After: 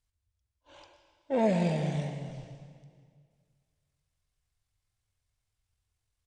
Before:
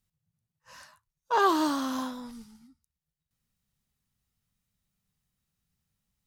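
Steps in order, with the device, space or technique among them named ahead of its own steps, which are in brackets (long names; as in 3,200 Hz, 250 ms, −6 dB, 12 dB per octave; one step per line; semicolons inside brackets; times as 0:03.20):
monster voice (pitch shifter −10 semitones; low-shelf EQ 180 Hz +5 dB; convolution reverb RT60 2.1 s, pre-delay 99 ms, DRR 8 dB)
level −3.5 dB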